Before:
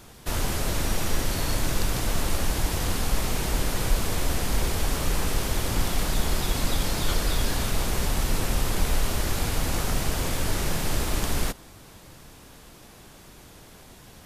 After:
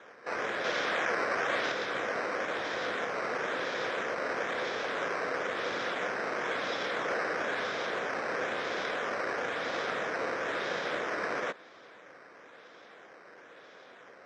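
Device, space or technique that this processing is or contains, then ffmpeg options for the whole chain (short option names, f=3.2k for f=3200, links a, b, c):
circuit-bent sampling toy: -filter_complex "[0:a]highpass=82,asettb=1/sr,asplit=3[a][b][c];[a]atrim=end=0.644[d];[b]atrim=start=0.64:end=1.72,asetpts=PTS-STARTPTS,afade=t=in:d=0.004:c=qsin,afade=t=out:st=1.076:d=0.004:c=qsin,equalizer=f=11k:t=o:w=2.3:g=6[e];[c]atrim=start=1.716[f];[d][e]acrossfade=d=0.004:c1=hsin:c2=qsin[g];[g][f]acrossfade=d=0.004:c1=qsin:c2=hsin,acrusher=samples=9:mix=1:aa=0.000001:lfo=1:lforange=9:lforate=1,highpass=480,equalizer=f=500:t=q:w=4:g=6,equalizer=f=880:t=q:w=4:g=-6,equalizer=f=1.6k:t=q:w=4:g=4,equalizer=f=2.8k:t=q:w=4:g=-8,equalizer=f=4.4k:t=q:w=4:g=-10,lowpass=f=4.9k:w=0.5412,lowpass=f=4.9k:w=1.3066"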